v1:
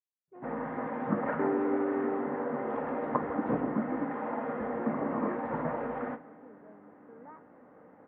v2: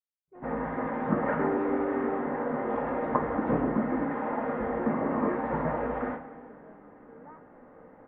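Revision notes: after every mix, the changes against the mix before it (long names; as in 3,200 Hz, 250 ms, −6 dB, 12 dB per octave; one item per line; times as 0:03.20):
first sound: send +10.0 dB
master: remove high-pass filter 100 Hz 12 dB per octave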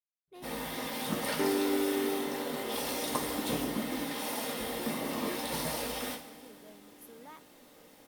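first sound −7.5 dB
master: remove Butterworth low-pass 1,700 Hz 36 dB per octave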